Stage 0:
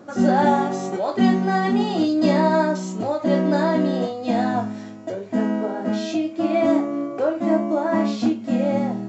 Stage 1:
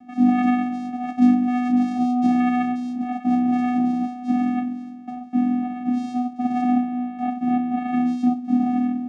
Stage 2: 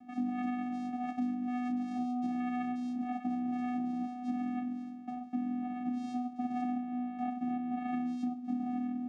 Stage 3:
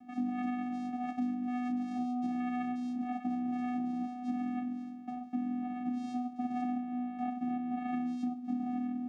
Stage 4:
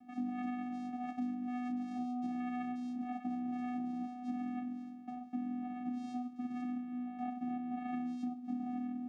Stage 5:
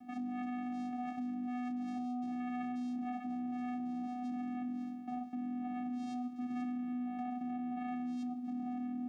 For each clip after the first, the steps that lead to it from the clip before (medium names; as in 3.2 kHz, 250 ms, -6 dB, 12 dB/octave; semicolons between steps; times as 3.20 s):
vocoder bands 4, square 247 Hz
compression 6:1, threshold -24 dBFS, peak gain reduction 12.5 dB; trim -7.5 dB
band-stop 630 Hz, Q 15
time-frequency box 6.23–7.06 s, 460–1200 Hz -8 dB; trim -4 dB
peak limiter -38 dBFS, peak gain reduction 9.5 dB; trim +5 dB